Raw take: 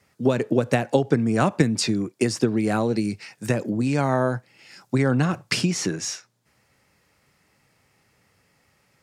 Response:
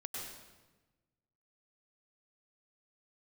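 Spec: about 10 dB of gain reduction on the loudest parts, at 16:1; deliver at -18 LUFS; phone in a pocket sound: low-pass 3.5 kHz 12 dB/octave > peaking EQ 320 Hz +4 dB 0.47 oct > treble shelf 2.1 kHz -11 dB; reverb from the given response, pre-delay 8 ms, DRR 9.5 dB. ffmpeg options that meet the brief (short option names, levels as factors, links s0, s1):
-filter_complex "[0:a]acompressor=threshold=0.0631:ratio=16,asplit=2[s0][s1];[1:a]atrim=start_sample=2205,adelay=8[s2];[s1][s2]afir=irnorm=-1:irlink=0,volume=0.355[s3];[s0][s3]amix=inputs=2:normalize=0,lowpass=3500,equalizer=f=320:t=o:w=0.47:g=4,highshelf=f=2100:g=-11,volume=3.76"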